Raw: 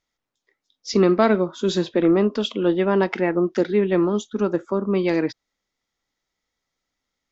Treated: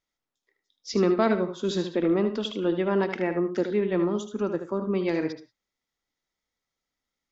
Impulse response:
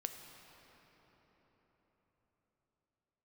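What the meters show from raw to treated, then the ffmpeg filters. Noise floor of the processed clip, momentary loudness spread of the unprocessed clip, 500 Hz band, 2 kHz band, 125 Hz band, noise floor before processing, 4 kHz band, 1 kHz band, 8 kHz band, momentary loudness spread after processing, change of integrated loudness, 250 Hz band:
below −85 dBFS, 6 LU, −5.5 dB, −5.5 dB, −5.5 dB, −83 dBFS, −5.5 dB, −5.5 dB, can't be measured, 6 LU, −5.5 dB, −5.5 dB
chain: -filter_complex "[0:a]asplit=2[link_01][link_02];[1:a]atrim=start_sample=2205,afade=type=out:start_time=0.17:duration=0.01,atrim=end_sample=7938,adelay=76[link_03];[link_02][link_03]afir=irnorm=-1:irlink=0,volume=-6.5dB[link_04];[link_01][link_04]amix=inputs=2:normalize=0,volume=-6dB"

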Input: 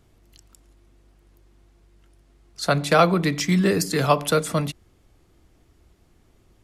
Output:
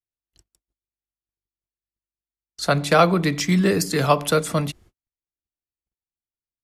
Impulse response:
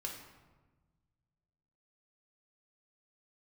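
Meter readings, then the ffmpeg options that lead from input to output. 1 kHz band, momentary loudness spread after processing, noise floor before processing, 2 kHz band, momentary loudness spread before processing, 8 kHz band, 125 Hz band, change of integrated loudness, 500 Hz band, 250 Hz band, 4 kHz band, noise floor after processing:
+1.0 dB, 9 LU, −60 dBFS, +1.0 dB, 9 LU, +1.0 dB, +1.0 dB, +1.0 dB, +1.0 dB, +1.0 dB, +1.0 dB, below −85 dBFS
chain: -af "agate=range=-47dB:threshold=-49dB:ratio=16:detection=peak,volume=1dB"

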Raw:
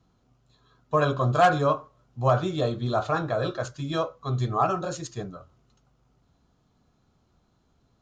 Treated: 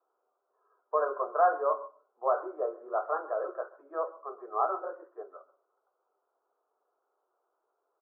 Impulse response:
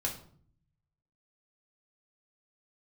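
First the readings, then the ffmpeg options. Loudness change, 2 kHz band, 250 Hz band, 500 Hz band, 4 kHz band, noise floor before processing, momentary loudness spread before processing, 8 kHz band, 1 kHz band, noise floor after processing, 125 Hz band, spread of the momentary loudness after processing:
−6.0 dB, −10.5 dB, −19.0 dB, −4.5 dB, below −40 dB, −68 dBFS, 13 LU, can't be measured, −4.5 dB, −81 dBFS, below −40 dB, 18 LU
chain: -filter_complex "[0:a]asuperpass=centerf=750:order=12:qfactor=0.7,aecho=1:1:132:0.106,asplit=2[link_01][link_02];[1:a]atrim=start_sample=2205,asetrate=74970,aresample=44100,adelay=122[link_03];[link_02][link_03]afir=irnorm=-1:irlink=0,volume=-21.5dB[link_04];[link_01][link_04]amix=inputs=2:normalize=0,volume=-4.5dB"

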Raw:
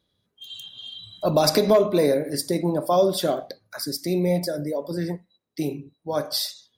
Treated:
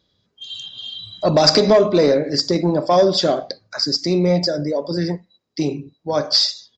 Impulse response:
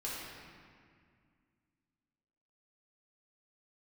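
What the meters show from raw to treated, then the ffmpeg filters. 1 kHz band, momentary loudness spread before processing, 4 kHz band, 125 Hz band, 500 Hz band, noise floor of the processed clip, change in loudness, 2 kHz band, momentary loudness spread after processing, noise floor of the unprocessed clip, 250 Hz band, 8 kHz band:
+5.0 dB, 18 LU, +10.5 dB, +5.5 dB, +5.0 dB, −69 dBFS, +6.0 dB, +6.0 dB, 17 LU, −74 dBFS, +5.5 dB, +2.5 dB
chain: -af "equalizer=frequency=4900:width_type=o:width=0.3:gain=8.5,aresample=16000,asoftclip=type=tanh:threshold=-10.5dB,aresample=44100,volume=6dB"

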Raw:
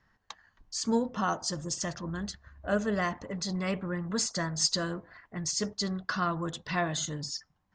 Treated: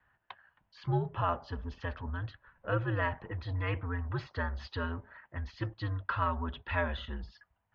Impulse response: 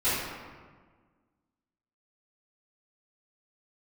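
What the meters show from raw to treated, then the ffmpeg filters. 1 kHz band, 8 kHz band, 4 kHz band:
−1.5 dB, below −35 dB, −13.5 dB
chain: -af "equalizer=frequency=125:width_type=o:width=1:gain=6,equalizer=frequency=250:width_type=o:width=1:gain=-3,equalizer=frequency=500:width_type=o:width=1:gain=-5,highpass=frequency=160:width_type=q:width=0.5412,highpass=frequency=160:width_type=q:width=1.307,lowpass=frequency=3200:width_type=q:width=0.5176,lowpass=frequency=3200:width_type=q:width=0.7071,lowpass=frequency=3200:width_type=q:width=1.932,afreqshift=-91"

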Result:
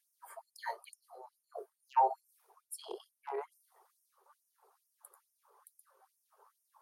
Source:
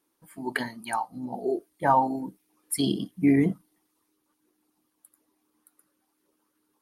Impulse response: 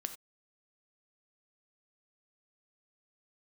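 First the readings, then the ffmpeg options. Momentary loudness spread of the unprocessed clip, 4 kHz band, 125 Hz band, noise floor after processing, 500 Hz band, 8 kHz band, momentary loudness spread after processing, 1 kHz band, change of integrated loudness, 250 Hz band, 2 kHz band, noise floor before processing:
13 LU, −17.5 dB, below −40 dB, −84 dBFS, −12.5 dB, −14.5 dB, 24 LU, −7.5 dB, −11.0 dB, −35.0 dB, −17.0 dB, −76 dBFS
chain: -af "aeval=exprs='0.335*(cos(1*acos(clip(val(0)/0.335,-1,1)))-cos(1*PI/2))+0.0944*(cos(5*acos(clip(val(0)/0.335,-1,1)))-cos(5*PI/2))+0.0299*(cos(7*acos(clip(val(0)/0.335,-1,1)))-cos(7*PI/2))':channel_layout=same,areverse,acompressor=threshold=-34dB:ratio=8,areverse,highshelf=frequency=1600:width_type=q:width=1.5:gain=-13,afftfilt=real='re*gte(b*sr/1024,350*pow(5300/350,0.5+0.5*sin(2*PI*2.3*pts/sr)))':imag='im*gte(b*sr/1024,350*pow(5300/350,0.5+0.5*sin(2*PI*2.3*pts/sr)))':win_size=1024:overlap=0.75,volume=7.5dB"

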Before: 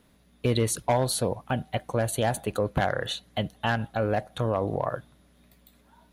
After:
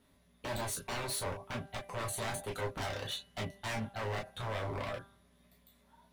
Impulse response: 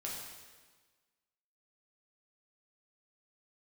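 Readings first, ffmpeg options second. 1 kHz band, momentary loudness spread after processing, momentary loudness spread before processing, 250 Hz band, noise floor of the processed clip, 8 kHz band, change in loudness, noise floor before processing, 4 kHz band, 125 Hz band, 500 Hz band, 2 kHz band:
−10.5 dB, 5 LU, 6 LU, −14.0 dB, −68 dBFS, −7.5 dB, −10.5 dB, −61 dBFS, −7.0 dB, −12.0 dB, −13.0 dB, −7.5 dB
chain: -filter_complex "[0:a]bandreject=frequency=197.3:width_type=h:width=4,bandreject=frequency=394.6:width_type=h:width=4,bandreject=frequency=591.9:width_type=h:width=4,bandreject=frequency=789.2:width_type=h:width=4,bandreject=frequency=986.5:width_type=h:width=4,bandreject=frequency=1183.8:width_type=h:width=4,bandreject=frequency=1381.1:width_type=h:width=4,bandreject=frequency=1578.4:width_type=h:width=4,bandreject=frequency=1775.7:width_type=h:width=4,bandreject=frequency=1973:width_type=h:width=4,bandreject=frequency=2170.3:width_type=h:width=4,bandreject=frequency=2367.6:width_type=h:width=4,bandreject=frequency=2564.9:width_type=h:width=4,bandreject=frequency=2762.2:width_type=h:width=4,bandreject=frequency=2959.5:width_type=h:width=4,aeval=exprs='0.0531*(abs(mod(val(0)/0.0531+3,4)-2)-1)':channel_layout=same[link_01];[1:a]atrim=start_sample=2205,atrim=end_sample=3087,asetrate=70560,aresample=44100[link_02];[link_01][link_02]afir=irnorm=-1:irlink=0"

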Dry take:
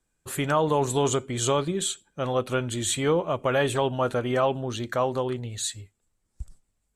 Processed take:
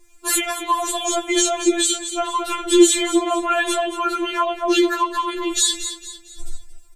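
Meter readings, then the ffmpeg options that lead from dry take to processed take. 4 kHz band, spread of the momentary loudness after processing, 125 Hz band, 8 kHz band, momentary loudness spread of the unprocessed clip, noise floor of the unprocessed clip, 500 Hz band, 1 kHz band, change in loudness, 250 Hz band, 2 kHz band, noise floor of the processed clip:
+10.5 dB, 9 LU, below −20 dB, +11.0 dB, 8 LU, −76 dBFS, +3.0 dB, +7.0 dB, +7.0 dB, +10.0 dB, +8.0 dB, −45 dBFS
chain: -filter_complex "[0:a]flanger=delay=8.9:depth=7.1:regen=59:speed=0.77:shape=triangular,acompressor=threshold=-37dB:ratio=6,asplit=2[link_01][link_02];[link_02]aecho=0:1:227|454|681|908:0.211|0.0867|0.0355|0.0146[link_03];[link_01][link_03]amix=inputs=2:normalize=0,alimiter=level_in=31.5dB:limit=-1dB:release=50:level=0:latency=1,afftfilt=real='re*4*eq(mod(b,16),0)':imag='im*4*eq(mod(b,16),0)':win_size=2048:overlap=0.75,volume=-4.5dB"

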